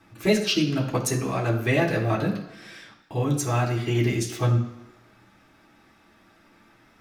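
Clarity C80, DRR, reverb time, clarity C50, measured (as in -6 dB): 11.0 dB, -4.0 dB, 1.1 s, 8.5 dB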